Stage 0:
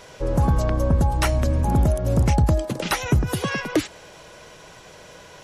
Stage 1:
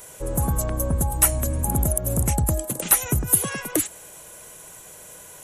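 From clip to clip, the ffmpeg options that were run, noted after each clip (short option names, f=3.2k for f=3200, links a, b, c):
-af "aexciter=amount=12.7:drive=5.8:freq=7.4k,volume=-4.5dB"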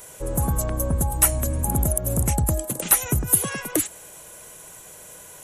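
-af anull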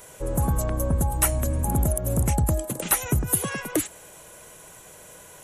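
-af "highshelf=f=5.3k:g=-6"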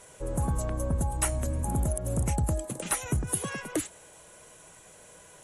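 -af "volume=-5dB" -ar 24000 -c:a aac -b:a 64k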